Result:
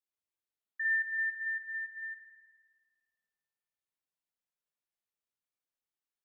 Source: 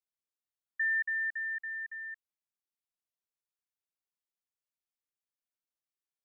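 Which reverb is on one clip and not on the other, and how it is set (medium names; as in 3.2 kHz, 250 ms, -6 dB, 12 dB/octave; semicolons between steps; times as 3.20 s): spring tank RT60 1.6 s, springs 50 ms, chirp 25 ms, DRR -1.5 dB; trim -4.5 dB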